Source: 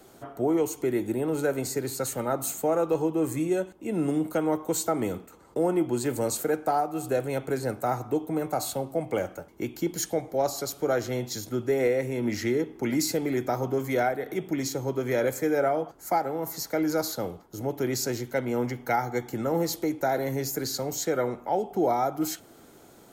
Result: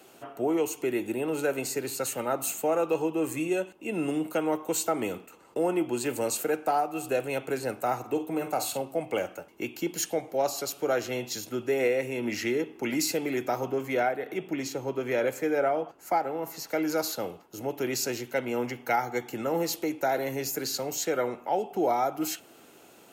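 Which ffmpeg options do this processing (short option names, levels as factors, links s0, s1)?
-filter_complex "[0:a]asettb=1/sr,asplit=3[s0][s1][s2];[s0]atrim=end=7.994[s3];[s1]atrim=start=7.99:end=8.82,asetpts=PTS-STARTPTS,afade=t=in:d=0.004:c=qsin,afade=t=out:st=0.826:d=0.004:c=qsin,asplit=2[s4][s5];[s5]adelay=48,volume=0.299[s6];[s4][s6]amix=inputs=2:normalize=0,atrim=end_sample=36603[s7];[s2]atrim=start=8.816[s8];[s3][s7]acrossfade=d=0.004:c1=hsin:c2=qsin[s9];[s9][s8]acrossfade=d=0.004:c1=qsin:c2=hsin,asettb=1/sr,asplit=3[s10][s11][s12];[s10]atrim=end=13.714[s13];[s11]atrim=start=13.71:end=16.69,asetpts=PTS-STARTPTS,afade=t=in:d=0.004:c=qsin,afade=t=out:st=2.976:d=0.004:c=qsin,highshelf=f=4000:g=-7[s14];[s12]atrim=start=16.686[s15];[s13][s14]acrossfade=d=0.004:c1=hsin:c2=qsin[s16];[s16][s15]acrossfade=d=0.004:c1=qsin:c2=hsin,highpass=f=290:p=1,equalizer=f=2700:t=o:w=0.26:g=12.5"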